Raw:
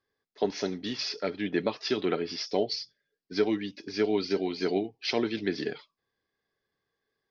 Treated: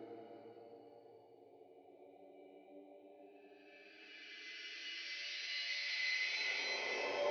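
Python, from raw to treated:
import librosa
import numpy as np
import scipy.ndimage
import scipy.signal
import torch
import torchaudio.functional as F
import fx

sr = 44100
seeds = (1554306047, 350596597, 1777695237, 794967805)

p1 = fx.graphic_eq(x, sr, hz=(125, 250, 500, 1000, 2000, 4000), db=(-6, -9, 9, 6, 7, -4))
p2 = p1 + fx.echo_single(p1, sr, ms=196, db=-22.5, dry=0)
p3 = fx.paulstretch(p2, sr, seeds[0], factor=28.0, window_s=0.1, from_s=4.87)
p4 = scipy.signal.sosfilt(scipy.signal.butter(2, 52.0, 'highpass', fs=sr, output='sos'), p3)
p5 = fx.comb_fb(p4, sr, f0_hz=290.0, decay_s=0.84, harmonics='all', damping=0.0, mix_pct=90)
y = p5 * 10.0 ** (3.0 / 20.0)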